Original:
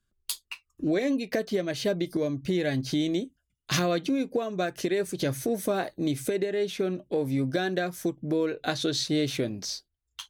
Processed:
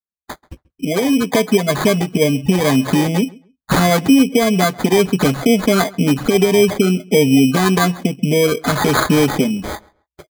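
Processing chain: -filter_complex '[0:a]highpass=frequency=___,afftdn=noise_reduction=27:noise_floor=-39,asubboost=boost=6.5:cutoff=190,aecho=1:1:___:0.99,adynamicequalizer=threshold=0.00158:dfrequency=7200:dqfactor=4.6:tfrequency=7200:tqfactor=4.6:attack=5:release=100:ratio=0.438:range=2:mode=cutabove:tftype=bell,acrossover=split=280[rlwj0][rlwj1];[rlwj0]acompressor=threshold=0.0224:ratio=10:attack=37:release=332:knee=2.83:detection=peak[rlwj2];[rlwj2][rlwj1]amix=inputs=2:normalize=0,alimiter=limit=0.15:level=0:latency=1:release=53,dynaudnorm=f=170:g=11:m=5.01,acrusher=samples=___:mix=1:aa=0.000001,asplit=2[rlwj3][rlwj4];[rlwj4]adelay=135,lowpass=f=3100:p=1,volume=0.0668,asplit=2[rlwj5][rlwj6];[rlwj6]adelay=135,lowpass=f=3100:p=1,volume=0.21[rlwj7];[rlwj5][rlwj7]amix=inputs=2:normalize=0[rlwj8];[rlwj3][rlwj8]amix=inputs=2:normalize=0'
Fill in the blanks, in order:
91, 4.5, 16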